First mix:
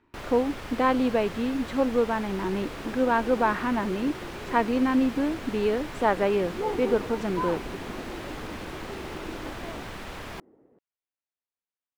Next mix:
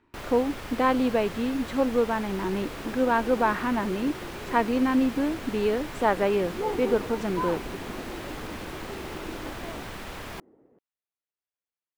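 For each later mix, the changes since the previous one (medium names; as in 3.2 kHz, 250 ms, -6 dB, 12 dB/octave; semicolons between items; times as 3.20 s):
master: add treble shelf 10 kHz +7 dB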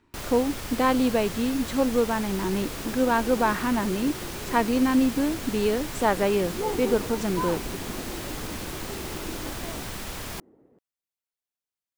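master: add tone controls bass +4 dB, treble +11 dB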